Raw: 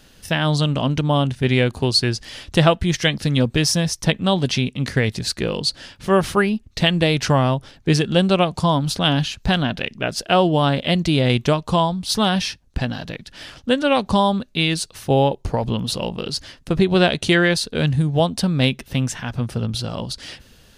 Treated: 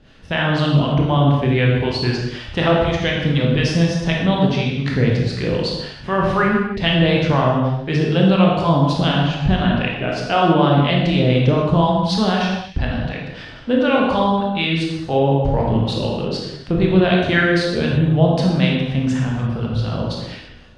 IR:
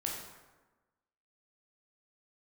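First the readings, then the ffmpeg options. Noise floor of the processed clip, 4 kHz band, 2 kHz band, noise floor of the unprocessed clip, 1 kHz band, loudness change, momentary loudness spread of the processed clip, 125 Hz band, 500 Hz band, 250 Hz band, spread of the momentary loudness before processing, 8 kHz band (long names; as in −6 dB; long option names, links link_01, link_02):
−36 dBFS, −2.5 dB, +1.5 dB, −52 dBFS, +2.0 dB, +2.0 dB, 8 LU, +3.5 dB, +2.0 dB, +3.0 dB, 9 LU, below −10 dB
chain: -filter_complex "[0:a]lowpass=3200,asplit=2[link_01][link_02];[link_02]alimiter=limit=-12.5dB:level=0:latency=1,volume=1dB[link_03];[link_01][link_03]amix=inputs=2:normalize=0,acrossover=split=620[link_04][link_05];[link_04]aeval=exprs='val(0)*(1-0.7/2+0.7/2*cos(2*PI*4*n/s))':channel_layout=same[link_06];[link_05]aeval=exprs='val(0)*(1-0.7/2-0.7/2*cos(2*PI*4*n/s))':channel_layout=same[link_07];[link_06][link_07]amix=inputs=2:normalize=0[link_08];[1:a]atrim=start_sample=2205,afade=type=out:start_time=0.32:duration=0.01,atrim=end_sample=14553,asetrate=34398,aresample=44100[link_09];[link_08][link_09]afir=irnorm=-1:irlink=0,volume=-3dB"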